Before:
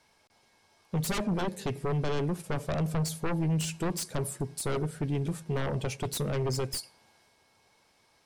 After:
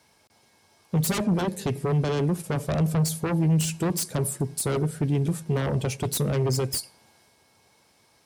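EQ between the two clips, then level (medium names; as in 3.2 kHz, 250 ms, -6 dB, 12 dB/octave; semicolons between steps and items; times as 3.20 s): high-pass 65 Hz; bass shelf 450 Hz +5.5 dB; treble shelf 7.2 kHz +8.5 dB; +2.0 dB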